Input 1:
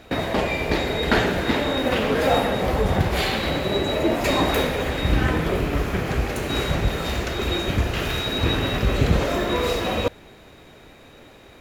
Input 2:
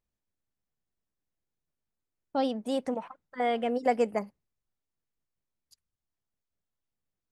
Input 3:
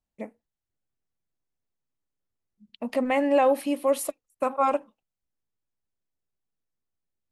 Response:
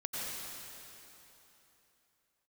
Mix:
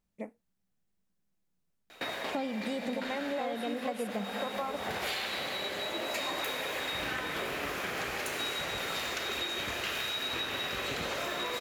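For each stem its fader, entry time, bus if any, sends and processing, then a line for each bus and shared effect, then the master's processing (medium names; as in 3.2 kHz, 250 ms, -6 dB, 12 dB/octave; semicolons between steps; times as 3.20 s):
-2.5 dB, 1.90 s, send -7.5 dB, high-pass 1.3 kHz 6 dB/octave; auto duck -13 dB, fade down 0.45 s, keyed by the second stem
+1.5 dB, 0.00 s, send -12 dB, peaking EQ 190 Hz +13.5 dB 0.37 oct
-3.5 dB, 0.00 s, no send, none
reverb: on, RT60 3.3 s, pre-delay 83 ms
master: compression 10:1, threshold -31 dBFS, peak gain reduction 16.5 dB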